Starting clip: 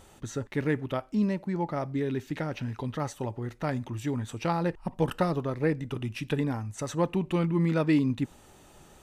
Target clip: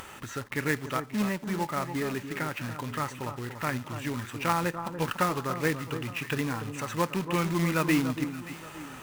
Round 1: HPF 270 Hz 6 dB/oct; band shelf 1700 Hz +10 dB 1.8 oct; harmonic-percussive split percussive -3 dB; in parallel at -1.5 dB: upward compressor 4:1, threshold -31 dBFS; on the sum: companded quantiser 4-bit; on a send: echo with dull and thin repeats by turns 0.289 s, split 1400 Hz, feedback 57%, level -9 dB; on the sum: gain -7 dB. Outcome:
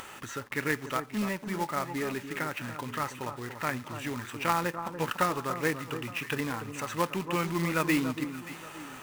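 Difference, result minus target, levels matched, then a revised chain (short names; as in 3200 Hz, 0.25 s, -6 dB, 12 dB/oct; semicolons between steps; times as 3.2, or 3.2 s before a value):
125 Hz band -3.0 dB
HPF 100 Hz 6 dB/oct; band shelf 1700 Hz +10 dB 1.8 oct; harmonic-percussive split percussive -3 dB; in parallel at -1.5 dB: upward compressor 4:1, threshold -31 dBFS; on the sum: companded quantiser 4-bit; on a send: echo with dull and thin repeats by turns 0.289 s, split 1400 Hz, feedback 57%, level -9 dB; on the sum: gain -7 dB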